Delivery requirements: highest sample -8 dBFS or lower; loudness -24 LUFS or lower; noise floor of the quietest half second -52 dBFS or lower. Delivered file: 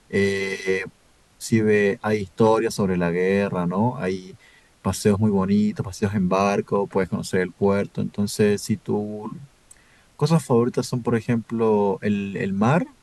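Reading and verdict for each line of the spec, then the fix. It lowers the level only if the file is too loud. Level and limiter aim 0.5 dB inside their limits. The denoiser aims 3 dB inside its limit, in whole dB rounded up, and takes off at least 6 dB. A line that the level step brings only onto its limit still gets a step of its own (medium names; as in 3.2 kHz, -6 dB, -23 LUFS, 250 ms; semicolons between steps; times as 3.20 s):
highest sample -6.0 dBFS: fail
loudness -22.5 LUFS: fail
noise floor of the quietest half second -57 dBFS: pass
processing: trim -2 dB; peak limiter -8.5 dBFS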